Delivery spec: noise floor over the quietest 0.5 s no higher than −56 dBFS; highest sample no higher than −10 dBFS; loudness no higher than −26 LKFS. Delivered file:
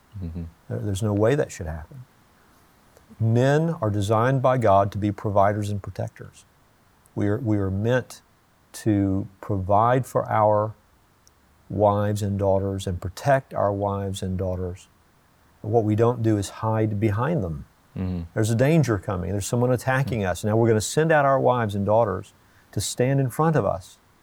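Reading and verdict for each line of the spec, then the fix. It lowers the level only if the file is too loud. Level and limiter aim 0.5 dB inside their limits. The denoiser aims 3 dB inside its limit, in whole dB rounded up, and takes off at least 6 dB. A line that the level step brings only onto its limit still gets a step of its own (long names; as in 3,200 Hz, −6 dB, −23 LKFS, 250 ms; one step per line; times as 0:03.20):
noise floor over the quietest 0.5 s −60 dBFS: in spec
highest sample −7.5 dBFS: out of spec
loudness −23.0 LKFS: out of spec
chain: level −3.5 dB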